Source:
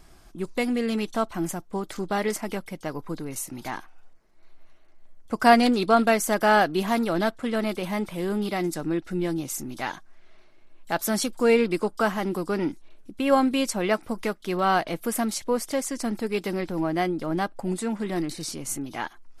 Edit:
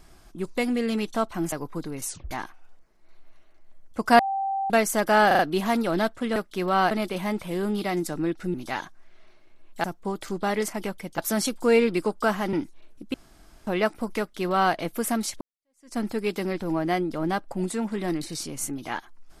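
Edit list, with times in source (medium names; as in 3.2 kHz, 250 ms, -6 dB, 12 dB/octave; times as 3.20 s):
1.52–2.86 s: move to 10.95 s
3.40 s: tape stop 0.25 s
5.53–6.04 s: bleep 781 Hz -24 dBFS
6.61 s: stutter 0.04 s, 4 plays
9.21–9.65 s: delete
12.30–12.61 s: delete
13.22–13.75 s: room tone
14.27–14.82 s: copy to 7.58 s
15.49–16.05 s: fade in exponential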